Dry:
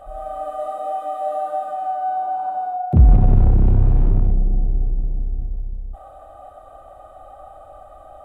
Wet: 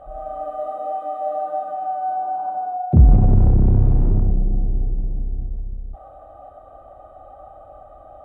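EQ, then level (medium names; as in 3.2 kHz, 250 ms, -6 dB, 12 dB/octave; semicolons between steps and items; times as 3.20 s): high-pass 300 Hz 6 dB/octave; tilt EQ -4 dB/octave; -2.0 dB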